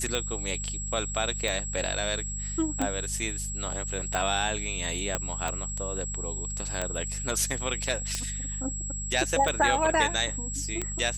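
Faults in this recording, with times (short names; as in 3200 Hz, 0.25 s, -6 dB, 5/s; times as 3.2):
hum 50 Hz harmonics 4 -36 dBFS
tick 45 rpm -14 dBFS
tone 7700 Hz -34 dBFS
5.15 pop -10 dBFS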